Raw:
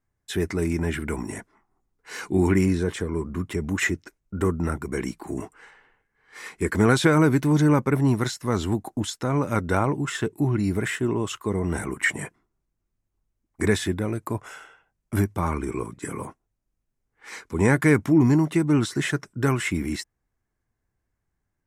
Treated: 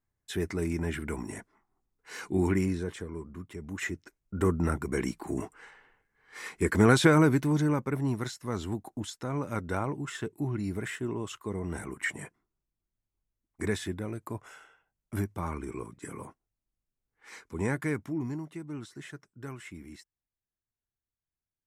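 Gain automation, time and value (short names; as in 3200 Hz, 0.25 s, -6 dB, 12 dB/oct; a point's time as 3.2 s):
2.45 s -6 dB
3.52 s -14.5 dB
4.52 s -2 dB
7.1 s -2 dB
7.77 s -9 dB
17.49 s -9 dB
18.54 s -19 dB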